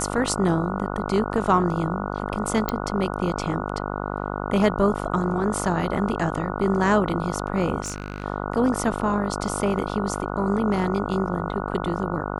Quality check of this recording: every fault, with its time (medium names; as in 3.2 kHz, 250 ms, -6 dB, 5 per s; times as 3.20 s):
buzz 50 Hz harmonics 29 -29 dBFS
2.69 s: pop -9 dBFS
7.82–8.24 s: clipped -24.5 dBFS